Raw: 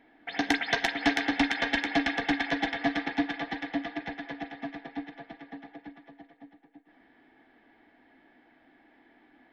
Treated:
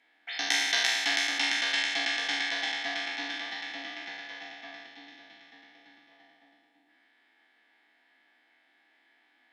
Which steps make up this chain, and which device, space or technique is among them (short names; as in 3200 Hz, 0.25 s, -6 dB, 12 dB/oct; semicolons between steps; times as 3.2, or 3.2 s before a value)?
spectral trails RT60 1.50 s; piezo pickup straight into a mixer (LPF 7100 Hz 12 dB/oct; differentiator); 4.86–6.11 bell 940 Hz -4.5 dB 2.5 oct; gain +7 dB